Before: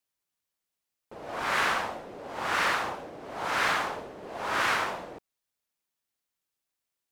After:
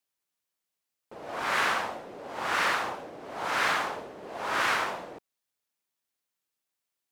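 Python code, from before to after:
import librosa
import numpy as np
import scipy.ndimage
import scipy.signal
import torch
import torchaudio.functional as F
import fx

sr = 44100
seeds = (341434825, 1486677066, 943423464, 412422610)

y = fx.low_shelf(x, sr, hz=88.0, db=-9.0)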